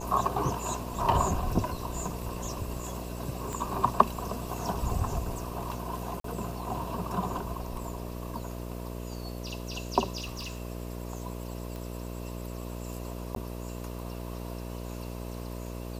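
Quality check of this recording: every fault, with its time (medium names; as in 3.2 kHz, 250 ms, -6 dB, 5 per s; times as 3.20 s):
buzz 60 Hz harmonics 11 -38 dBFS
3.53 s: pop
6.20–6.24 s: dropout 43 ms
10.20–10.62 s: clipped -32.5 dBFS
11.76 s: pop
13.35–13.36 s: dropout 12 ms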